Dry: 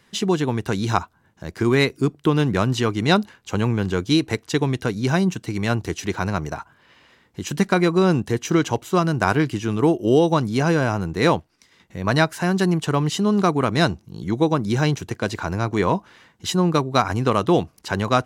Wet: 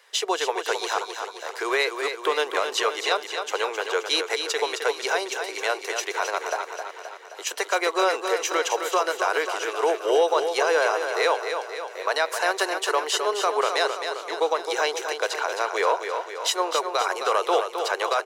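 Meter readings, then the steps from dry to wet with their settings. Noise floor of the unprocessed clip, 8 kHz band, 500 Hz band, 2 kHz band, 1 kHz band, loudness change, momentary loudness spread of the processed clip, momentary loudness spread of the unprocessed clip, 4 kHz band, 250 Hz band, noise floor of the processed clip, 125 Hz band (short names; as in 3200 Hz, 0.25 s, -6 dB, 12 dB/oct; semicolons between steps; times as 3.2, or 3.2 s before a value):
-60 dBFS, +3.5 dB, -1.5 dB, +1.0 dB, 0.0 dB, -3.5 dB, 8 LU, 8 LU, +2.0 dB, -18.5 dB, -40 dBFS, under -40 dB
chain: steep high-pass 440 Hz 48 dB/oct; limiter -15 dBFS, peak gain reduction 11.5 dB; feedback echo 0.263 s, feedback 58%, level -7 dB; gain +3 dB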